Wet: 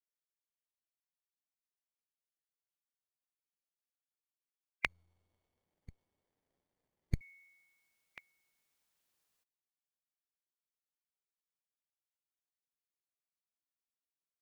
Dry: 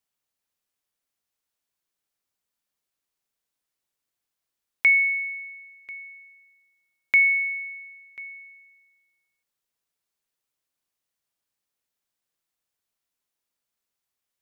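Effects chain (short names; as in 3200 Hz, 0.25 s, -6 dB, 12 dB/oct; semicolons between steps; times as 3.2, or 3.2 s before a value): spectral gate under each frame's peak -15 dB weak; 4.86–7.21 running maximum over 33 samples; gain +2.5 dB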